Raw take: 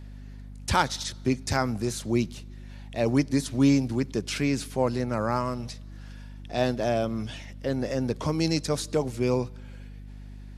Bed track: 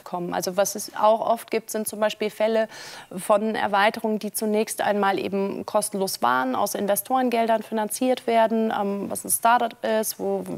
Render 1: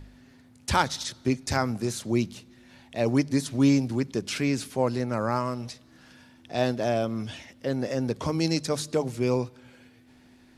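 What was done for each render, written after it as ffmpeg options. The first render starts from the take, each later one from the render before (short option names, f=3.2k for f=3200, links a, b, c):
-af "bandreject=f=50:t=h:w=4,bandreject=f=100:t=h:w=4,bandreject=f=150:t=h:w=4,bandreject=f=200:t=h:w=4"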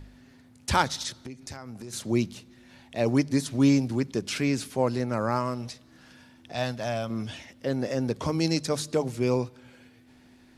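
-filter_complex "[0:a]asettb=1/sr,asplit=3[a][b][c];[a]atrim=end=1.244[d];[b]atrim=start=1.24:end=1.93,asetpts=PTS-STARTPTS,afade=t=in:d=0.004:c=qsin,afade=t=out:st=0.686:d=0.004:c=qsin,acompressor=threshold=-37dB:ratio=6:attack=3.2:release=140:knee=1:detection=peak[e];[c]atrim=start=1.926[f];[d][e]acrossfade=d=0.004:c1=hsin:c2=qsin[g];[g][f]acrossfade=d=0.004:c1=qsin:c2=hsin,asettb=1/sr,asplit=3[h][i][j];[h]atrim=end=6.534[k];[i]atrim=start=6.53:end=7.1,asetpts=PTS-STARTPTS,afade=t=in:d=0.004:c=qsin,afade=t=out:st=0.566:d=0.004:c=qsin,equalizer=f=360:w=1.2:g=-12.5[l];[j]atrim=start=7.096[m];[k][l]acrossfade=d=0.004:c1=hsin:c2=qsin[n];[n][m]acrossfade=d=0.004:c1=qsin:c2=hsin"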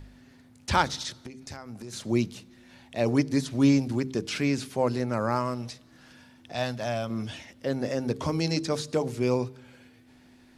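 -filter_complex "[0:a]acrossover=split=6600[a][b];[b]acompressor=threshold=-46dB:ratio=4:attack=1:release=60[c];[a][c]amix=inputs=2:normalize=0,bandreject=f=65.01:t=h:w=4,bandreject=f=130.02:t=h:w=4,bandreject=f=195.03:t=h:w=4,bandreject=f=260.04:t=h:w=4,bandreject=f=325.05:t=h:w=4,bandreject=f=390.06:t=h:w=4,bandreject=f=455.07:t=h:w=4"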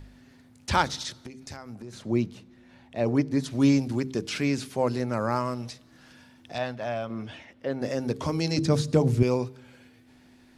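-filter_complex "[0:a]asettb=1/sr,asplit=3[a][b][c];[a]atrim=end=1.754[d];[b]atrim=start=1.75:end=3.44,asetpts=PTS-STARTPTS,afade=t=in:d=0.004:c=qsin,afade=t=out:st=1.686:d=0.004:c=qsin,highshelf=f=3.1k:g=-11.5[e];[c]atrim=start=3.436[f];[d][e]acrossfade=d=0.004:c1=hsin:c2=qsin[g];[g][f]acrossfade=d=0.004:c1=qsin:c2=hsin,asettb=1/sr,asplit=3[h][i][j];[h]atrim=end=6.584[k];[i]atrim=start=6.58:end=7.82,asetpts=PTS-STARTPTS,afade=t=in:d=0.004:c=qsin,afade=t=out:st=1.236:d=0.004:c=qsin,bass=f=250:g=-5,treble=f=4k:g=-14[l];[j]atrim=start=7.816[m];[k][l]acrossfade=d=0.004:c1=hsin:c2=qsin[n];[n][m]acrossfade=d=0.004:c1=qsin:c2=hsin,asettb=1/sr,asplit=3[o][p][q];[o]atrim=end=8.584[r];[p]atrim=start=8.58:end=9.23,asetpts=PTS-STARTPTS,afade=t=in:d=0.004:c=qsin,afade=t=out:st=0.646:d=0.004:c=qsin,equalizer=f=100:w=0.47:g=14.5[s];[q]atrim=start=9.226[t];[r][s]acrossfade=d=0.004:c1=hsin:c2=qsin[u];[u][t]acrossfade=d=0.004:c1=qsin:c2=hsin"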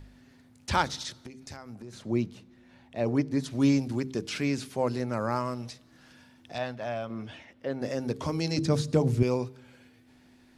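-af "volume=-2.5dB"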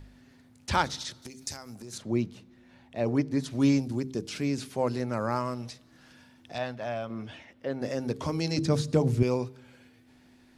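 -filter_complex "[0:a]asettb=1/sr,asplit=3[a][b][c];[a]atrim=end=1.224[d];[b]atrim=start=1.22:end=1.98,asetpts=PTS-STARTPTS,afade=t=in:d=0.004:c=qsin,afade=t=out:st=0.756:d=0.004:c=qsin,bass=f=250:g=-1,treble=f=4k:g=14[e];[c]atrim=start=1.976[f];[d][e]acrossfade=d=0.004:c1=hsin:c2=qsin[g];[g][f]acrossfade=d=0.004:c1=qsin:c2=hsin,asettb=1/sr,asplit=3[h][i][j];[h]atrim=end=3.814[k];[i]atrim=start=3.81:end=4.58,asetpts=PTS-STARTPTS,afade=t=in:d=0.004:c=qsin,afade=t=out:st=0.766:d=0.004:c=qsin,equalizer=f=1.8k:t=o:w=2.3:g=-6[l];[j]atrim=start=4.576[m];[k][l]acrossfade=d=0.004:c1=hsin:c2=qsin[n];[n][m]acrossfade=d=0.004:c1=qsin:c2=hsin"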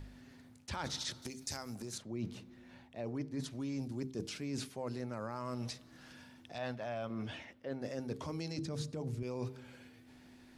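-af "alimiter=limit=-19.5dB:level=0:latency=1,areverse,acompressor=threshold=-36dB:ratio=10,areverse"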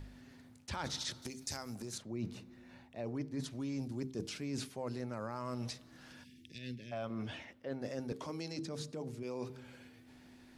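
-filter_complex "[0:a]asettb=1/sr,asplit=3[a][b][c];[a]atrim=end=2.094[d];[b]atrim=start=2.09:end=3.02,asetpts=PTS-STARTPTS,afade=t=in:d=0.004:c=qsin,afade=t=out:st=0.926:d=0.004:c=qsin,bandreject=f=3.2k:w=12[e];[c]atrim=start=3.016[f];[d][e]acrossfade=d=0.004:c1=hsin:c2=qsin[g];[g][f]acrossfade=d=0.004:c1=qsin:c2=hsin,asplit=3[h][i][j];[h]afade=t=out:st=6.23:d=0.02[k];[i]asuperstop=centerf=930:order=8:qfactor=0.55,afade=t=in:st=6.23:d=0.02,afade=t=out:st=6.91:d=0.02[l];[j]afade=t=in:st=6.91:d=0.02[m];[k][l][m]amix=inputs=3:normalize=0,asettb=1/sr,asplit=3[n][o][p];[n]atrim=end=8.124[q];[o]atrim=start=8.12:end=9.5,asetpts=PTS-STARTPTS,afade=t=in:d=0.004:c=qsin,afade=t=out:st=1.376:d=0.004:c=qsin,highpass=190[r];[p]atrim=start=9.496[s];[q][r]acrossfade=d=0.004:c1=hsin:c2=qsin[t];[t][s]acrossfade=d=0.004:c1=qsin:c2=hsin"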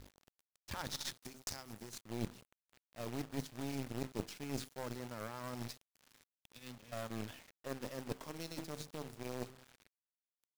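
-af "acrusher=bits=7:mix=0:aa=0.000001,aeval=exprs='0.0631*(cos(1*acos(clip(val(0)/0.0631,-1,1)))-cos(1*PI/2))+0.0282*(cos(2*acos(clip(val(0)/0.0631,-1,1)))-cos(2*PI/2))+0.00708*(cos(7*acos(clip(val(0)/0.0631,-1,1)))-cos(7*PI/2))':c=same"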